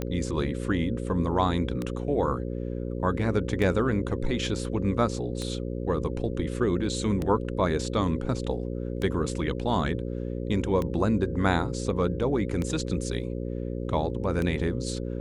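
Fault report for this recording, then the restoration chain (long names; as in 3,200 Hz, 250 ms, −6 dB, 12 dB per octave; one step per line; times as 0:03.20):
mains buzz 60 Hz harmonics 9 −32 dBFS
scratch tick 33 1/3 rpm −17 dBFS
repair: click removal
hum removal 60 Hz, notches 9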